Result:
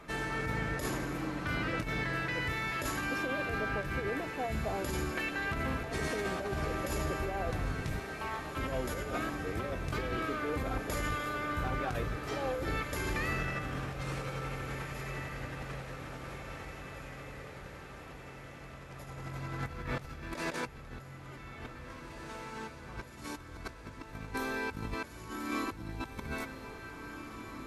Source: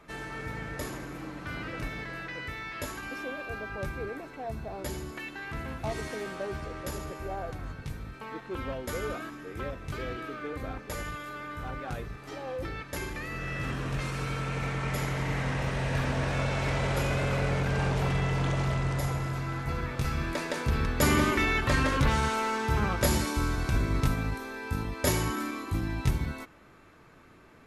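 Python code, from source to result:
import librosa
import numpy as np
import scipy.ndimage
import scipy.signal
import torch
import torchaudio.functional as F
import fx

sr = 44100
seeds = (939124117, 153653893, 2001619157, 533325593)

y = fx.over_compress(x, sr, threshold_db=-36.0, ratio=-0.5)
y = fx.brickwall_highpass(y, sr, low_hz=540.0, at=(7.99, 8.57))
y = fx.echo_diffused(y, sr, ms=1941, feedback_pct=55, wet_db=-8.5)
y = F.gain(torch.from_numpy(y), -1.5).numpy()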